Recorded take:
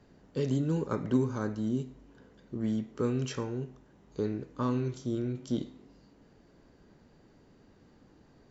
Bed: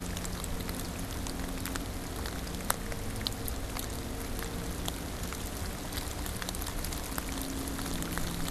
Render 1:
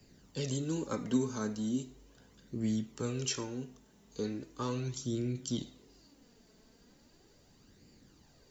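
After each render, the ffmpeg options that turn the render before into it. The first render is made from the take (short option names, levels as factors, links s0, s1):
-filter_complex "[0:a]flanger=delay=0.4:depth=4.2:regen=35:speed=0.38:shape=sinusoidal,acrossover=split=280|530|1800[s0][s1][s2][s3];[s3]crystalizer=i=5:c=0[s4];[s0][s1][s2][s4]amix=inputs=4:normalize=0"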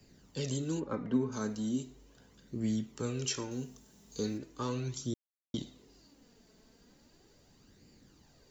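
-filter_complex "[0:a]asplit=3[s0][s1][s2];[s0]afade=t=out:st=0.79:d=0.02[s3];[s1]lowpass=2000,afade=t=in:st=0.79:d=0.02,afade=t=out:st=1.31:d=0.02[s4];[s2]afade=t=in:st=1.31:d=0.02[s5];[s3][s4][s5]amix=inputs=3:normalize=0,asettb=1/sr,asplit=3[s6][s7][s8];[s6]atrim=end=3.514[s9];[s7]atrim=start=3.51:end=4.38,asetpts=PTS-STARTPTS,afade=t=in:d=0.004:c=qsin,afade=t=out:st=0.866:d=0.004:c=qsin,bass=f=250:g=3,treble=f=4000:g=9[s10];[s8]atrim=start=4.376[s11];[s9][s10]acrossfade=d=0.004:c1=hsin:c2=qsin[s12];[s12][s11]acrossfade=d=0.004:c1=qsin:c2=hsin,asplit=3[s13][s14][s15];[s13]atrim=end=5.14,asetpts=PTS-STARTPTS,afade=t=out:st=5.136:d=0.004:c=hsin[s16];[s14]atrim=start=5.14:end=5.54,asetpts=PTS-STARTPTS,volume=0[s17];[s15]atrim=start=5.54,asetpts=PTS-STARTPTS,afade=t=in:d=0.004:c=hsin[s18];[s16][s17][s18]concat=n=3:v=0:a=1"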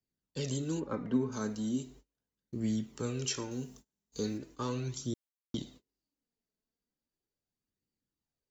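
-af "agate=range=0.0282:threshold=0.00224:ratio=16:detection=peak"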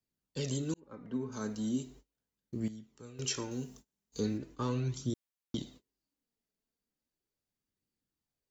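-filter_complex "[0:a]asettb=1/sr,asplit=3[s0][s1][s2];[s0]atrim=end=4.204[s3];[s1]atrim=start=4.2:end=5.1,asetpts=PTS-STARTPTS,afade=t=in:d=0.004:c=qsin,afade=t=out:st=0.896:d=0.004:c=qsin,bass=f=250:g=4,treble=f=4000:g=-5[s4];[s2]atrim=start=5.096[s5];[s3][s4]acrossfade=d=0.004:c1=hsin:c2=qsin[s6];[s6][s5]acrossfade=d=0.004:c1=qsin:c2=hsin,asplit=4[s7][s8][s9][s10];[s7]atrim=end=0.74,asetpts=PTS-STARTPTS,afade=t=out:st=0.736:d=0.004:c=hsin[s11];[s8]atrim=start=0.74:end=2.68,asetpts=PTS-STARTPTS,afade=t=in:d=0.9,afade=t=out:st=1.81:d=0.13:c=log:silence=0.188365[s12];[s9]atrim=start=2.68:end=3.19,asetpts=PTS-STARTPTS,volume=0.188[s13];[s10]atrim=start=3.19,asetpts=PTS-STARTPTS,afade=t=in:d=0.13:c=log:silence=0.188365[s14];[s11][s12][s13][s14]concat=n=4:v=0:a=1"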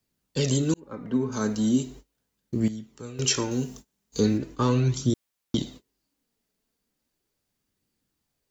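-af "volume=3.55"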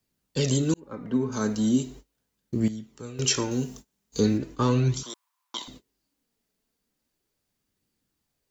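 -filter_complex "[0:a]asettb=1/sr,asplit=3[s0][s1][s2];[s0]atrim=end=5.034[s3];[s1]atrim=start=5.03:end=5.68,asetpts=PTS-STARTPTS,afade=t=in:d=0.004:c=qsin,afade=t=out:st=0.646:d=0.004:c=qsin,highpass=f=1000:t=q:w=11[s4];[s2]atrim=start=5.676[s5];[s3][s4]acrossfade=d=0.004:c1=hsin:c2=qsin[s6];[s6][s5]acrossfade=d=0.004:c1=qsin:c2=hsin"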